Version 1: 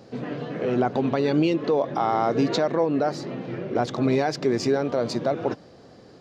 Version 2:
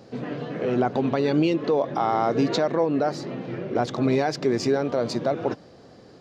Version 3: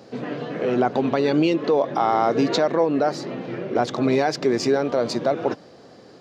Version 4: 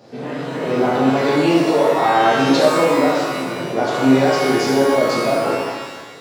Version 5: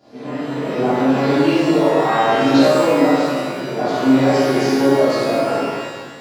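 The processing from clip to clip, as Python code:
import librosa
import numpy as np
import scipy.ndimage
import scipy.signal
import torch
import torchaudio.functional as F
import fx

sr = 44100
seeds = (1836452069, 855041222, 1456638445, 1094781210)

y1 = x
y2 = fx.highpass(y1, sr, hz=200.0, slope=6)
y2 = y2 * librosa.db_to_amplitude(3.5)
y3 = fx.rev_shimmer(y2, sr, seeds[0], rt60_s=1.3, semitones=12, shimmer_db=-8, drr_db=-7.0)
y3 = y3 * librosa.db_to_amplitude(-3.5)
y4 = fx.room_shoebox(y3, sr, seeds[1], volume_m3=310.0, walls='mixed', distance_m=3.1)
y4 = y4 * librosa.db_to_amplitude(-10.0)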